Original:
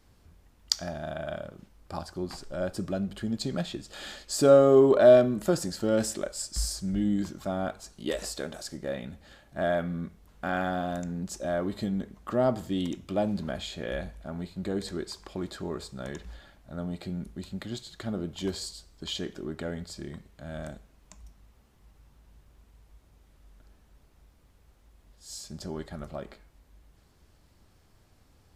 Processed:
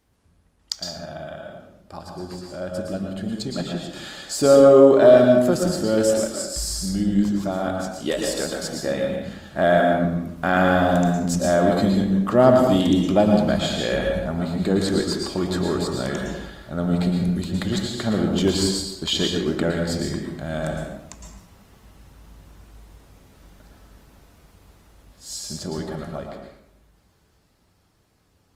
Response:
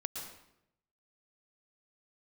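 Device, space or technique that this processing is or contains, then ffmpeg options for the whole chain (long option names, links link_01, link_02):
far-field microphone of a smart speaker: -filter_complex "[1:a]atrim=start_sample=2205[link_01];[0:a][link_01]afir=irnorm=-1:irlink=0,highpass=frequency=82:poles=1,dynaudnorm=framelen=200:gausssize=31:maxgain=13dB" -ar 48000 -c:a libopus -b:a 32k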